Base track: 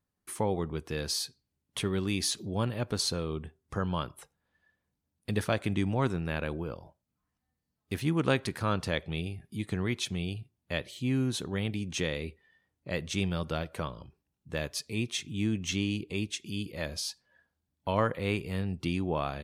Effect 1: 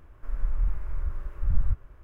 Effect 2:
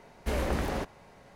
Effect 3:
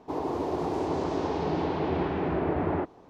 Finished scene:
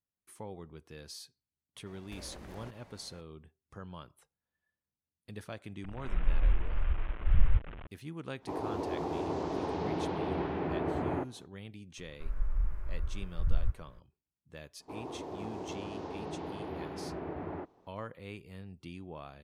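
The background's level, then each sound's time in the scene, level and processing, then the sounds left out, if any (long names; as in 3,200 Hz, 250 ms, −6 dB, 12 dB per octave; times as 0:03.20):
base track −14.5 dB
0:01.86: mix in 2 −4.5 dB + downward compressor 16 to 1, threshold −39 dBFS
0:05.84: mix in 1 −0.5 dB + linear delta modulator 16 kbit/s, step −38 dBFS
0:08.39: mix in 3 −5.5 dB, fades 0.05 s
0:11.97: mix in 1 −5 dB
0:14.80: mix in 3 −12 dB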